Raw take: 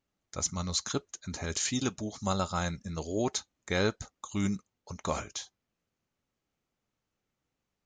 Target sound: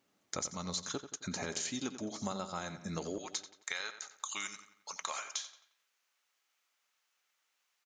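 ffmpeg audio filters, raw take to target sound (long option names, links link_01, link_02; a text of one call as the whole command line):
ffmpeg -i in.wav -filter_complex "[0:a]asetnsamples=nb_out_samples=441:pad=0,asendcmd='3.18 highpass f 1300',highpass=190,acompressor=threshold=-45dB:ratio=10,asplit=2[link_01][link_02];[link_02]adelay=89,lowpass=frequency=4200:poles=1,volume=-11dB,asplit=2[link_03][link_04];[link_04]adelay=89,lowpass=frequency=4200:poles=1,volume=0.49,asplit=2[link_05][link_06];[link_06]adelay=89,lowpass=frequency=4200:poles=1,volume=0.49,asplit=2[link_07][link_08];[link_08]adelay=89,lowpass=frequency=4200:poles=1,volume=0.49,asplit=2[link_09][link_10];[link_10]adelay=89,lowpass=frequency=4200:poles=1,volume=0.49[link_11];[link_01][link_03][link_05][link_07][link_09][link_11]amix=inputs=6:normalize=0,volume=9.5dB" out.wav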